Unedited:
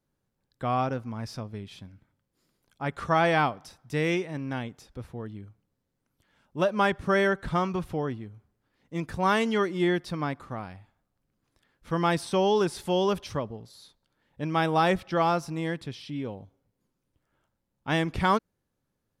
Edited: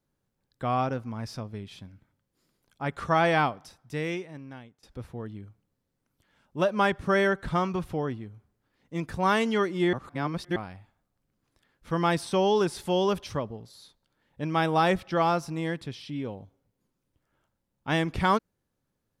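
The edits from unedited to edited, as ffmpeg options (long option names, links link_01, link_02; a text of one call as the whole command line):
ffmpeg -i in.wav -filter_complex "[0:a]asplit=4[link_01][link_02][link_03][link_04];[link_01]atrim=end=4.83,asetpts=PTS-STARTPTS,afade=type=out:start_time=3.39:duration=1.44:silence=0.0891251[link_05];[link_02]atrim=start=4.83:end=9.932,asetpts=PTS-STARTPTS,afade=type=in:duration=0.004:curve=hsin:silence=0.0891251[link_06];[link_03]atrim=start=9.928:end=10.562,asetpts=PTS-STARTPTS,areverse[link_07];[link_04]atrim=start=10.558[link_08];[link_05][link_06]concat=n=2:v=0:a=1[link_09];[link_09][link_07]acrossfade=duration=0.004:curve1=hsin:curve2=hsin[link_10];[link_10][link_08]acrossfade=duration=0.004:curve1=hsin:curve2=hsin" out.wav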